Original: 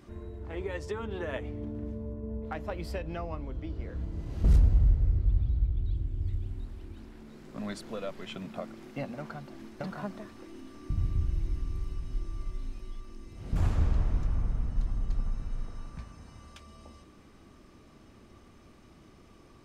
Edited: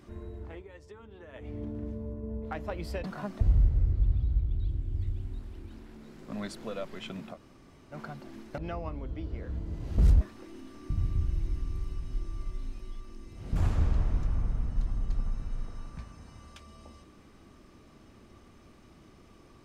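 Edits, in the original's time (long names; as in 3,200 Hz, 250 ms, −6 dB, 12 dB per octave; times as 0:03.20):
0:00.41–0:01.56: duck −14 dB, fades 0.22 s
0:03.04–0:04.67: swap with 0:09.84–0:10.21
0:08.59–0:09.19: fill with room tone, crossfade 0.10 s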